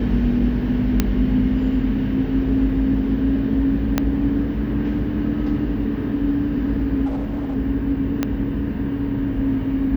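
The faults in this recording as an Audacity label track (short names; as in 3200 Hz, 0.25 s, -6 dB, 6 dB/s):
1.000000	1.000000	pop -3 dBFS
3.980000	3.980000	pop -4 dBFS
7.050000	7.570000	clipped -21 dBFS
8.230000	8.230000	pop -7 dBFS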